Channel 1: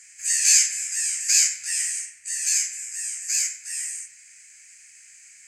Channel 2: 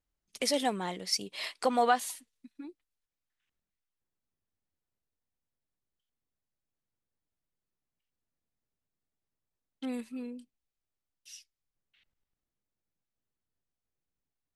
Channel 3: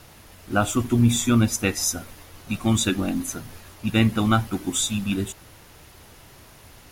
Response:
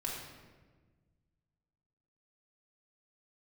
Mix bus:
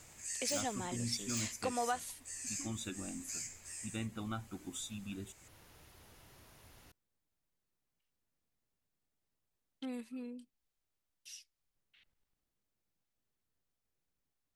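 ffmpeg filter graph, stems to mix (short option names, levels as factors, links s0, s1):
-filter_complex "[0:a]aeval=exprs='0.316*(abs(mod(val(0)/0.316+3,4)-2)-1)':c=same,volume=0.282[s0];[1:a]volume=1.26[s1];[2:a]volume=0.251[s2];[s0][s1][s2]amix=inputs=3:normalize=0,acompressor=threshold=0.002:ratio=1.5"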